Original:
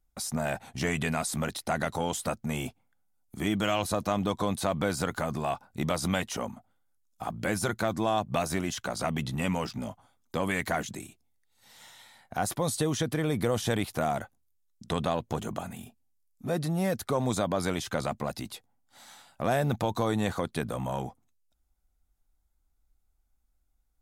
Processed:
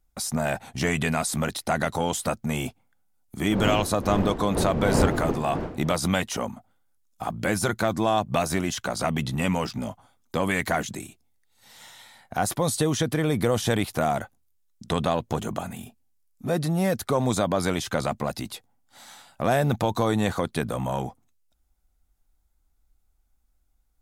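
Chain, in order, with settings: 3.49–5.96 wind noise 430 Hz -24 dBFS; gain +4.5 dB

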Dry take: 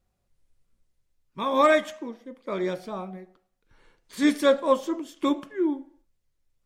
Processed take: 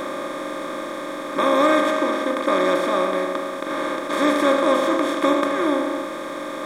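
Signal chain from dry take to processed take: per-bin compression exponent 0.2; gain -3.5 dB

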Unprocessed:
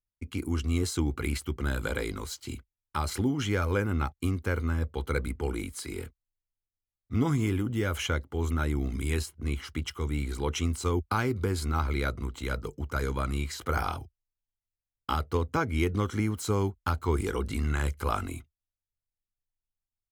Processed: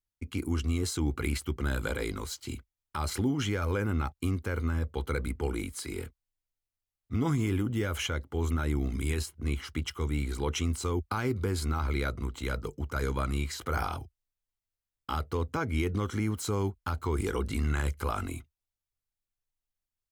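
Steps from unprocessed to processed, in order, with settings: limiter -19.5 dBFS, peak gain reduction 5 dB

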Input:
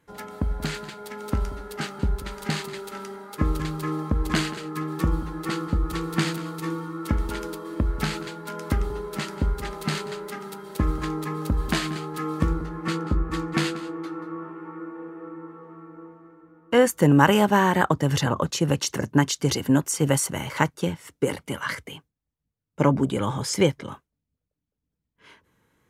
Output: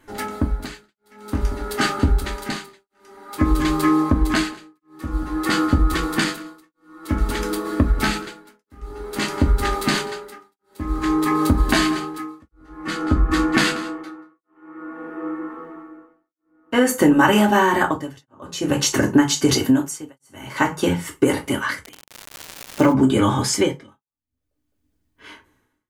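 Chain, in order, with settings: reverb RT60 0.25 s, pre-delay 3 ms, DRR -1 dB; tremolo 0.52 Hz, depth 100%; 21.83–22.92 crackle 120/s -> 520/s -30 dBFS; compressor 4:1, threshold -21 dBFS, peak gain reduction 11 dB; gain +8.5 dB

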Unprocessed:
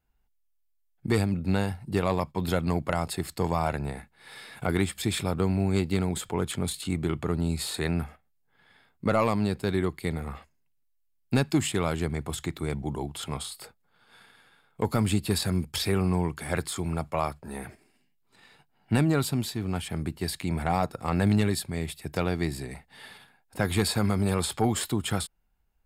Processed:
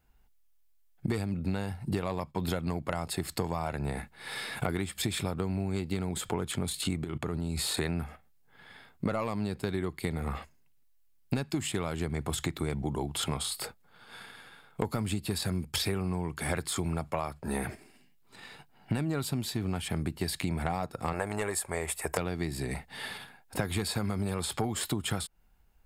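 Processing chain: 7.04–7.77 level quantiser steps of 19 dB; 21.13–22.18 ten-band EQ 125 Hz -12 dB, 250 Hz -10 dB, 500 Hz +7 dB, 1000 Hz +9 dB, 2000 Hz +4 dB, 4000 Hz -10 dB, 8000 Hz +9 dB; compressor 12:1, threshold -35 dBFS, peak gain reduction 17 dB; gain +7.5 dB

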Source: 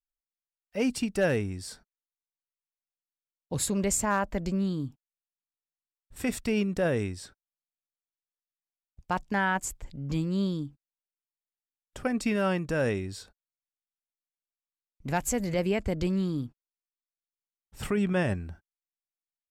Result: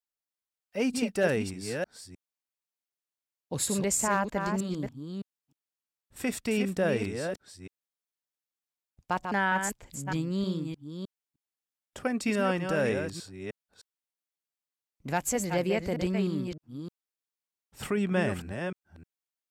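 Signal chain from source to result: reverse delay 0.307 s, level -6 dB; HPF 160 Hz 6 dB/oct

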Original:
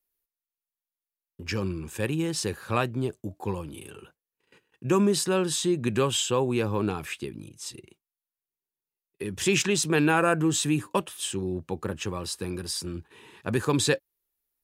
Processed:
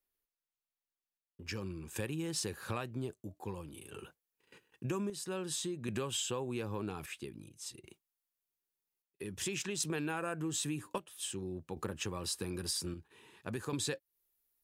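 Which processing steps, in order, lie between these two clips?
chopper 0.51 Hz, depth 60%, duty 60%; compressor 5:1, threshold -34 dBFS, peak gain reduction 14.5 dB; high shelf 5400 Hz -6.5 dB, from 1.44 s +4 dB; gain -1.5 dB

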